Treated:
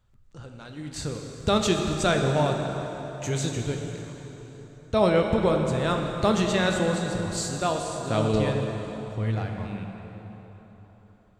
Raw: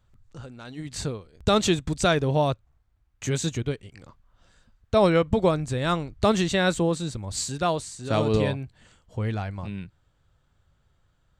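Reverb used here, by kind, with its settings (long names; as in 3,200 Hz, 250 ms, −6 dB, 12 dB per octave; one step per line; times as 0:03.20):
dense smooth reverb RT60 4.1 s, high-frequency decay 0.7×, DRR 2 dB
level −2.5 dB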